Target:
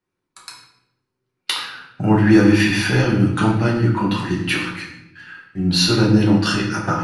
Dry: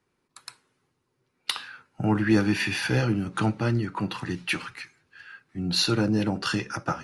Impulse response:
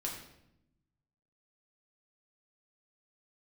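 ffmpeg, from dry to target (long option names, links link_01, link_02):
-filter_complex "[0:a]agate=range=-13dB:threshold=-54dB:ratio=16:detection=peak[link_01];[1:a]atrim=start_sample=2205[link_02];[link_01][link_02]afir=irnorm=-1:irlink=0,volume=6.5dB"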